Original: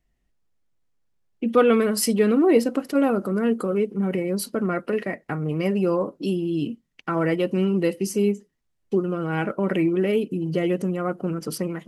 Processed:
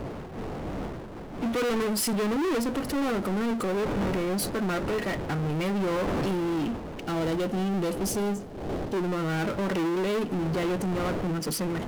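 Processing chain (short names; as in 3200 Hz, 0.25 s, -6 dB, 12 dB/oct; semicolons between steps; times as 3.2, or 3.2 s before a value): wind noise 440 Hz -36 dBFS; soft clip -24 dBFS, distortion -8 dB; spectral gain 7.01–8.96, 880–2800 Hz -9 dB; power-law curve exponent 0.5; gain -1.5 dB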